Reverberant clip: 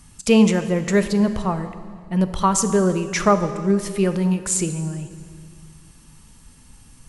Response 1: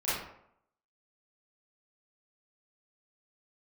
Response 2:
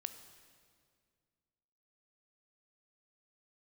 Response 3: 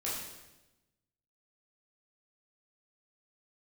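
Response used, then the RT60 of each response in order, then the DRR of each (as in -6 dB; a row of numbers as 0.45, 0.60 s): 2; 0.70, 2.1, 1.0 s; -13.0, 9.5, -7.5 dB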